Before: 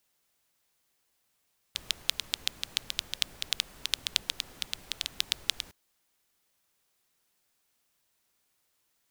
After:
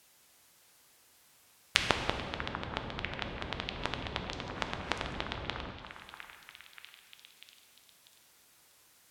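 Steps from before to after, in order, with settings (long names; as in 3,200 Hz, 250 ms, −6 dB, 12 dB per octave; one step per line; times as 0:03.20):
high-pass filter 45 Hz
treble cut that deepens with the level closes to 840 Hz, closed at −39.5 dBFS
echo through a band-pass that steps 643 ms, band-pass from 1,200 Hz, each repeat 0.7 octaves, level −7 dB
convolution reverb RT60 2.1 s, pre-delay 5 ms, DRR 5 dB
boost into a limiter +12 dB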